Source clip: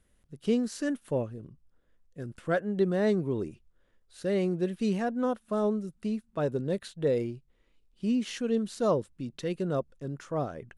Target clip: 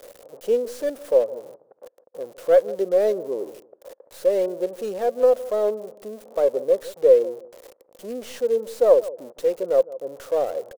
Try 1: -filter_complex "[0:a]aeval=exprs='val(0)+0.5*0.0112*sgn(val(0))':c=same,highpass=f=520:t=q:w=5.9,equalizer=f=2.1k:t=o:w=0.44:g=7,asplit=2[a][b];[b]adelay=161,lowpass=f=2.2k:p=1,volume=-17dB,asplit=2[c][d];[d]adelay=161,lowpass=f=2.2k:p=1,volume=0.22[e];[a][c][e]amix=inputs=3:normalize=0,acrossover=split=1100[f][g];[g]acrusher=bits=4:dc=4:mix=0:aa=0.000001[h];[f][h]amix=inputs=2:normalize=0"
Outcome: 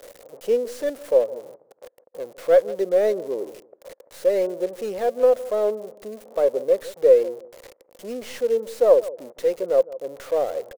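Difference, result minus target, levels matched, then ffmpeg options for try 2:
2000 Hz band +2.5 dB
-filter_complex "[0:a]aeval=exprs='val(0)+0.5*0.0112*sgn(val(0))':c=same,highpass=f=520:t=q:w=5.9,asplit=2[a][b];[b]adelay=161,lowpass=f=2.2k:p=1,volume=-17dB,asplit=2[c][d];[d]adelay=161,lowpass=f=2.2k:p=1,volume=0.22[e];[a][c][e]amix=inputs=3:normalize=0,acrossover=split=1100[f][g];[g]acrusher=bits=4:dc=4:mix=0:aa=0.000001[h];[f][h]amix=inputs=2:normalize=0"

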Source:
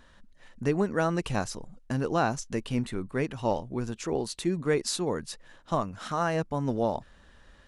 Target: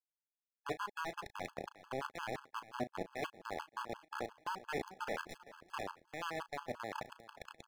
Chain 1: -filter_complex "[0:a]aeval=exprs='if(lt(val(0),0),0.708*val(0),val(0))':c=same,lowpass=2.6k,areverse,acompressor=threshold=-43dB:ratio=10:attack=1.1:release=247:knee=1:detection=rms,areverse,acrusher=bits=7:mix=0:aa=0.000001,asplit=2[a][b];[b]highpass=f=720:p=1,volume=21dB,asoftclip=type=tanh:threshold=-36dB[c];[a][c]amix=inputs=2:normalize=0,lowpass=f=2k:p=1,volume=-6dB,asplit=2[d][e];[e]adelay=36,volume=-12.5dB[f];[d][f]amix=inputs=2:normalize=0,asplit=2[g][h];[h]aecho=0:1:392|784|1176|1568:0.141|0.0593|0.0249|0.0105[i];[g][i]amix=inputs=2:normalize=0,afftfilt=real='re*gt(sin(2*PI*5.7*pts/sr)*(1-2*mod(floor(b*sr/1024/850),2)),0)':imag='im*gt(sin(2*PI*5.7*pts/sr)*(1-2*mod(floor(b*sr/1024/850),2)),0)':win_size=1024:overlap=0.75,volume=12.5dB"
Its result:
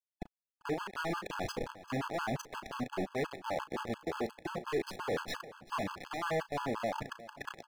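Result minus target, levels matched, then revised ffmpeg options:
compressor: peak gain reduction -6 dB
-filter_complex "[0:a]aeval=exprs='if(lt(val(0),0),0.708*val(0),val(0))':c=same,lowpass=2.6k,areverse,acompressor=threshold=-49.5dB:ratio=10:attack=1.1:release=247:knee=1:detection=rms,areverse,acrusher=bits=7:mix=0:aa=0.000001,asplit=2[a][b];[b]highpass=f=720:p=1,volume=21dB,asoftclip=type=tanh:threshold=-36dB[c];[a][c]amix=inputs=2:normalize=0,lowpass=f=2k:p=1,volume=-6dB,asplit=2[d][e];[e]adelay=36,volume=-12.5dB[f];[d][f]amix=inputs=2:normalize=0,asplit=2[g][h];[h]aecho=0:1:392|784|1176|1568:0.141|0.0593|0.0249|0.0105[i];[g][i]amix=inputs=2:normalize=0,afftfilt=real='re*gt(sin(2*PI*5.7*pts/sr)*(1-2*mod(floor(b*sr/1024/850),2)),0)':imag='im*gt(sin(2*PI*5.7*pts/sr)*(1-2*mod(floor(b*sr/1024/850),2)),0)':win_size=1024:overlap=0.75,volume=12.5dB"

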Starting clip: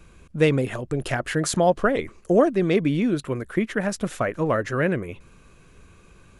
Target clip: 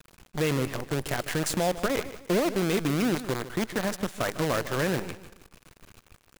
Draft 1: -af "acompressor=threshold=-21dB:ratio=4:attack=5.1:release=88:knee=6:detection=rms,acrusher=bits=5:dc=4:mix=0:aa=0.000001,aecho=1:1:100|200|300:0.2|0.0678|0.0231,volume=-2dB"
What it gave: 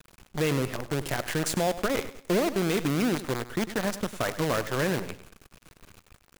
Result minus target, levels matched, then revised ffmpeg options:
echo 52 ms early
-af "acompressor=threshold=-21dB:ratio=4:attack=5.1:release=88:knee=6:detection=rms,acrusher=bits=5:dc=4:mix=0:aa=0.000001,aecho=1:1:152|304|456:0.2|0.0678|0.0231,volume=-2dB"

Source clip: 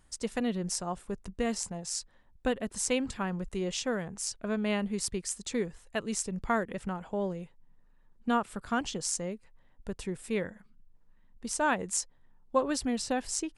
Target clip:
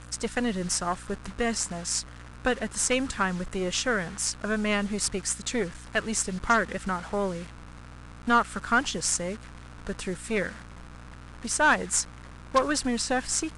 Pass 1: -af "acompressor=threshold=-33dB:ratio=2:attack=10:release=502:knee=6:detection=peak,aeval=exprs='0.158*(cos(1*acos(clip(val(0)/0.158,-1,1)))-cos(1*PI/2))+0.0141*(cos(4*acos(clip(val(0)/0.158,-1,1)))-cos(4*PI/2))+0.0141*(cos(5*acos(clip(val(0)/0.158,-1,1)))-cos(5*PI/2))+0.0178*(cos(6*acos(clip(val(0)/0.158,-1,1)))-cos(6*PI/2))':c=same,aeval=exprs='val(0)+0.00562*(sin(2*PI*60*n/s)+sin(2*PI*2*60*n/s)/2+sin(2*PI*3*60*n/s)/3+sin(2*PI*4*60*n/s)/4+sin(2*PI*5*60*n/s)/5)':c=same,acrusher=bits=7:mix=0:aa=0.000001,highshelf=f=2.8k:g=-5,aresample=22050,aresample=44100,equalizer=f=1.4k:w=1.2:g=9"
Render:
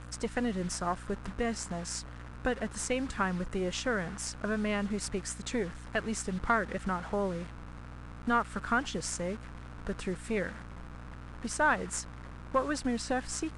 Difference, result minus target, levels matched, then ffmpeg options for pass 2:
compressor: peak gain reduction +8 dB; 4000 Hz band -3.0 dB
-af "aeval=exprs='0.158*(cos(1*acos(clip(val(0)/0.158,-1,1)))-cos(1*PI/2))+0.0141*(cos(4*acos(clip(val(0)/0.158,-1,1)))-cos(4*PI/2))+0.0141*(cos(5*acos(clip(val(0)/0.158,-1,1)))-cos(5*PI/2))+0.0178*(cos(6*acos(clip(val(0)/0.158,-1,1)))-cos(6*PI/2))':c=same,aeval=exprs='val(0)+0.00562*(sin(2*PI*60*n/s)+sin(2*PI*2*60*n/s)/2+sin(2*PI*3*60*n/s)/3+sin(2*PI*4*60*n/s)/4+sin(2*PI*5*60*n/s)/5)':c=same,acrusher=bits=7:mix=0:aa=0.000001,highshelf=f=2.8k:g=4,aresample=22050,aresample=44100,equalizer=f=1.4k:w=1.2:g=9"

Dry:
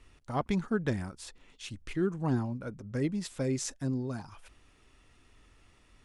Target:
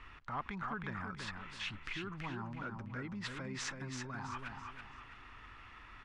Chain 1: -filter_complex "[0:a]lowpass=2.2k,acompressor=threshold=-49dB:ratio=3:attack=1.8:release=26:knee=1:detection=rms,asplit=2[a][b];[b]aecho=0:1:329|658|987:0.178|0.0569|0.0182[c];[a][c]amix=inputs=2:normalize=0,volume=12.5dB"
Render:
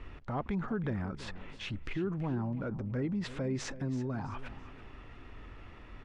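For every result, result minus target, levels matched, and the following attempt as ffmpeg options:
1000 Hz band -7.0 dB; echo-to-direct -10 dB
-filter_complex "[0:a]lowpass=2.2k,acompressor=threshold=-49dB:ratio=3:attack=1.8:release=26:knee=1:detection=rms,lowshelf=f=790:t=q:w=1.5:g=-10.5,asplit=2[a][b];[b]aecho=0:1:329|658|987:0.178|0.0569|0.0182[c];[a][c]amix=inputs=2:normalize=0,volume=12.5dB"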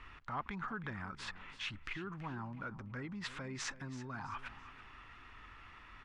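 echo-to-direct -10 dB
-filter_complex "[0:a]lowpass=2.2k,acompressor=threshold=-49dB:ratio=3:attack=1.8:release=26:knee=1:detection=rms,lowshelf=f=790:t=q:w=1.5:g=-10.5,asplit=2[a][b];[b]aecho=0:1:329|658|987|1316:0.562|0.18|0.0576|0.0184[c];[a][c]amix=inputs=2:normalize=0,volume=12.5dB"

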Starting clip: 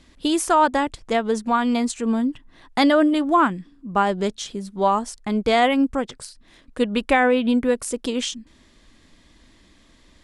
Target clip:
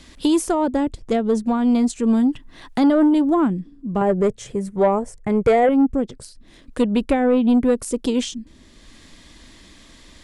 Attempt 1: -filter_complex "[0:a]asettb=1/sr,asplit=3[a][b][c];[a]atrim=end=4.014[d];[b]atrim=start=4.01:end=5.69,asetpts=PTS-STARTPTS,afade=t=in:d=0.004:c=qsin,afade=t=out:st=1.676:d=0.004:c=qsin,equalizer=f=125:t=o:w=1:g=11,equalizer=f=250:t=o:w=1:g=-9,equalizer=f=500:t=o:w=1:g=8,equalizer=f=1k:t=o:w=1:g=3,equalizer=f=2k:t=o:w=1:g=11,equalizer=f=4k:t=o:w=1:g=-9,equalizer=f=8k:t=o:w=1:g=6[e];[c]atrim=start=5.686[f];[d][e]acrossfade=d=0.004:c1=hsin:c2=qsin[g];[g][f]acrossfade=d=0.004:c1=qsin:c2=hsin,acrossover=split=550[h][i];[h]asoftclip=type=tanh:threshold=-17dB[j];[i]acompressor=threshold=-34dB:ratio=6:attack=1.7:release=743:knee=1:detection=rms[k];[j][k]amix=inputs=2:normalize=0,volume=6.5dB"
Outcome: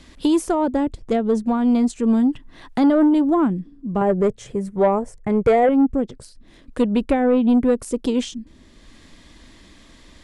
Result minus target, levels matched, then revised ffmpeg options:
8000 Hz band -4.5 dB
-filter_complex "[0:a]asettb=1/sr,asplit=3[a][b][c];[a]atrim=end=4.014[d];[b]atrim=start=4.01:end=5.69,asetpts=PTS-STARTPTS,afade=t=in:d=0.004:c=qsin,afade=t=out:st=1.676:d=0.004:c=qsin,equalizer=f=125:t=o:w=1:g=11,equalizer=f=250:t=o:w=1:g=-9,equalizer=f=500:t=o:w=1:g=8,equalizer=f=1k:t=o:w=1:g=3,equalizer=f=2k:t=o:w=1:g=11,equalizer=f=4k:t=o:w=1:g=-9,equalizer=f=8k:t=o:w=1:g=6[e];[c]atrim=start=5.686[f];[d][e]acrossfade=d=0.004:c1=hsin:c2=qsin[g];[g][f]acrossfade=d=0.004:c1=qsin:c2=hsin,acrossover=split=550[h][i];[h]asoftclip=type=tanh:threshold=-17dB[j];[i]acompressor=threshold=-34dB:ratio=6:attack=1.7:release=743:knee=1:detection=rms,highshelf=f=2.9k:g=5[k];[j][k]amix=inputs=2:normalize=0,volume=6.5dB"

